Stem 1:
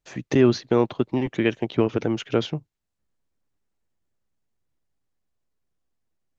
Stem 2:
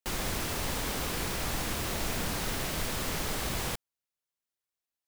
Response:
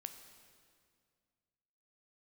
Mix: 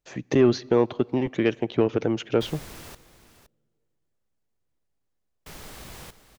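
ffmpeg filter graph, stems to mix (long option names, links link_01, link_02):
-filter_complex "[0:a]equalizer=frequency=490:width=1.5:gain=3.5,volume=-2.5dB,asplit=2[link_01][link_02];[link_02]volume=-13.5dB[link_03];[1:a]adelay=2350,volume=-9.5dB,asplit=3[link_04][link_05][link_06];[link_04]atrim=end=2.95,asetpts=PTS-STARTPTS,afade=type=out:start_time=2.946:duration=0.004:curve=hsin[link_07];[link_05]atrim=start=2.95:end=5.46,asetpts=PTS-STARTPTS,volume=0[link_08];[link_06]atrim=start=5.46,asetpts=PTS-STARTPTS,afade=type=in:duration=0.004:curve=hsin[link_09];[link_07][link_08][link_09]concat=n=3:v=0:a=1,asplit=2[link_10][link_11];[link_11]volume=-13.5dB[link_12];[2:a]atrim=start_sample=2205[link_13];[link_03][link_13]afir=irnorm=-1:irlink=0[link_14];[link_12]aecho=0:1:516:1[link_15];[link_01][link_10][link_14][link_15]amix=inputs=4:normalize=0,asoftclip=type=tanh:threshold=-7.5dB"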